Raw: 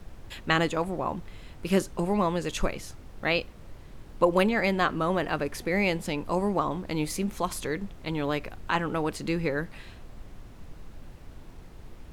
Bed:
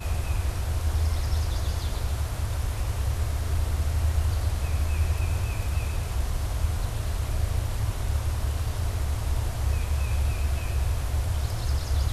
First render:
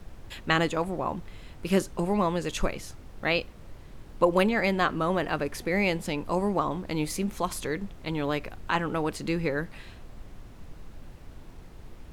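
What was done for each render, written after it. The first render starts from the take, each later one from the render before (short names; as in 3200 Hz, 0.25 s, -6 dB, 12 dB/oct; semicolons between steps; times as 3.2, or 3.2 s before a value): nothing audible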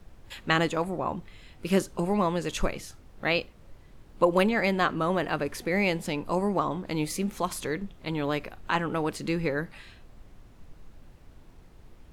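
noise print and reduce 6 dB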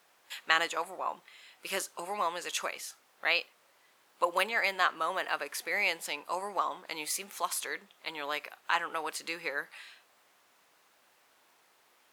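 HPF 880 Hz 12 dB/oct; high shelf 9800 Hz +6 dB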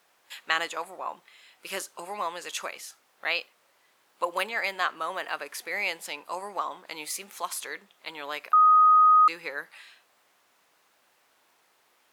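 8.53–9.28 bleep 1250 Hz -14 dBFS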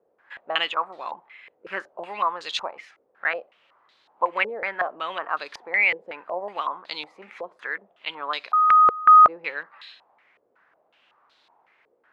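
stepped low-pass 5.4 Hz 480–4000 Hz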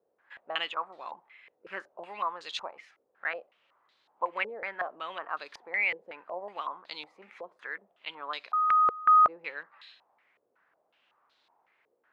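gain -8 dB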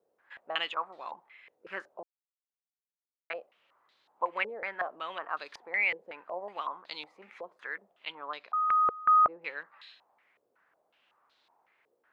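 2.03–3.3 mute; 8.12–9.42 high shelf 2600 Hz -12 dB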